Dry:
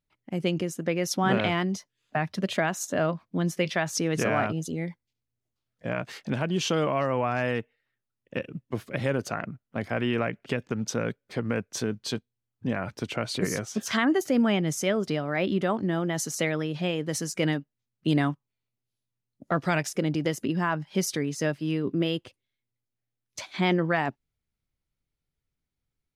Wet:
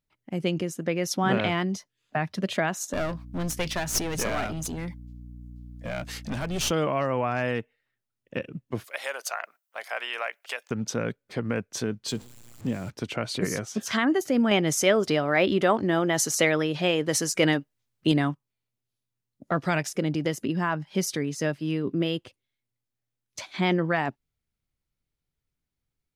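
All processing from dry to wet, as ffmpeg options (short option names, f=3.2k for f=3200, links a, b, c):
-filter_complex "[0:a]asettb=1/sr,asplit=3[a][b][c];[a]atrim=end=2.934[d];[b]atrim=start=2.93:end=6.71,asetpts=PTS-STARTPTS,afade=t=in:d=0.004:c=qsin,afade=t=out:st=3.776:d=0.004:c=qsin,highshelf=f=5k:g=12,aeval=exprs='clip(val(0),-1,0.0282)':c=same,aeval=exprs='val(0)+0.00891*(sin(2*PI*60*n/s)+sin(2*PI*2*60*n/s)/2+sin(2*PI*3*60*n/s)/3+sin(2*PI*4*60*n/s)/4+sin(2*PI*5*60*n/s)/5)':c=same[e];[c]atrim=start=6.706[f];[d][e]acrossfade=d=0.004:c1=hsin:c2=qsin[g];[g][f]acrossfade=d=0.004:c1=qsin:c2=hsin,asettb=1/sr,asplit=3[h][i][j];[h]atrim=end=8.844[k];[i]atrim=start=8.84:end=10.71,asetpts=PTS-STARTPTS,afade=t=in:d=0.004:c=qsin,afade=t=out:st=1.866:d=0.004:c=qsin,highpass=f=650:w=0.5412,highpass=f=650:w=1.3066,aemphasis=mode=production:type=50kf[l];[j]atrim=start=10.706[m];[k][l]acrossfade=d=0.004:c1=hsin:c2=qsin[n];[n][m]acrossfade=d=0.004:c1=qsin:c2=hsin,asettb=1/sr,asplit=3[o][p][q];[o]atrim=end=12.084[r];[p]atrim=start=12.08:end=12.9,asetpts=PTS-STARTPTS,afade=t=in:d=0.004:c=qsin,afade=t=out:st=0.816:d=0.004:c=qsin,aeval=exprs='val(0)+0.5*0.00841*sgn(val(0))':c=same,equalizer=f=7.4k:t=o:w=0.21:g=10.5,acrossover=split=480|3000[s][t][u];[t]acompressor=threshold=-42dB:ratio=6:attack=3.2:release=140:knee=2.83:detection=peak[v];[s][v][u]amix=inputs=3:normalize=0[w];[q]atrim=start=12.896[x];[r][w]acrossfade=d=0.004:c1=hsin:c2=qsin[y];[y][x]acrossfade=d=0.004:c1=qsin:c2=hsin,asettb=1/sr,asplit=3[z][aa][ab];[z]atrim=end=14.514[ac];[aa]atrim=start=14.51:end=18.12,asetpts=PTS-STARTPTS,afade=t=in:d=0.004:c=qsin,afade=t=out:st=3.606:d=0.004:c=qsin,equalizer=f=180:w=1.2:g=-7.5,acontrast=66[ad];[ab]atrim=start=18.116[ae];[ac][ad]acrossfade=d=0.004:c1=hsin:c2=qsin[af];[af][ae]acrossfade=d=0.004:c1=qsin:c2=hsin"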